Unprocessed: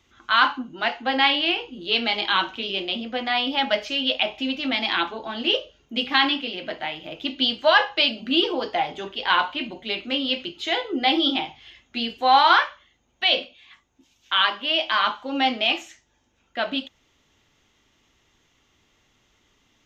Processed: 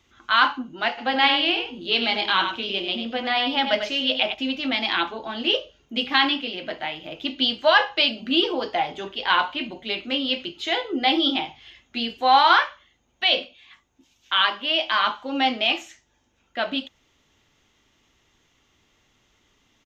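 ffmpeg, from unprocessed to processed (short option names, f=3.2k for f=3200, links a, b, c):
-filter_complex "[0:a]asplit=3[a][b][c];[a]afade=t=out:st=0.97:d=0.02[d];[b]aecho=1:1:96:0.422,afade=t=in:st=0.97:d=0.02,afade=t=out:st=4.33:d=0.02[e];[c]afade=t=in:st=4.33:d=0.02[f];[d][e][f]amix=inputs=3:normalize=0"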